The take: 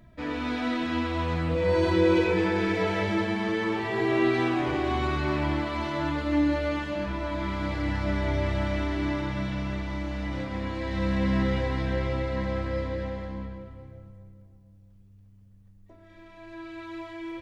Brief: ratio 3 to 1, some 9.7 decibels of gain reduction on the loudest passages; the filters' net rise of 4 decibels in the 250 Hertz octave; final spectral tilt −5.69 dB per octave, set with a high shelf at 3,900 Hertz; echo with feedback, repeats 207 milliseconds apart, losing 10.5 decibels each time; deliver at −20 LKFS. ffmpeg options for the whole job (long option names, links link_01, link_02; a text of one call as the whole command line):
ffmpeg -i in.wav -af "equalizer=frequency=250:width_type=o:gain=5.5,highshelf=frequency=3900:gain=4,acompressor=threshold=-29dB:ratio=3,aecho=1:1:207|414|621:0.299|0.0896|0.0269,volume=11dB" out.wav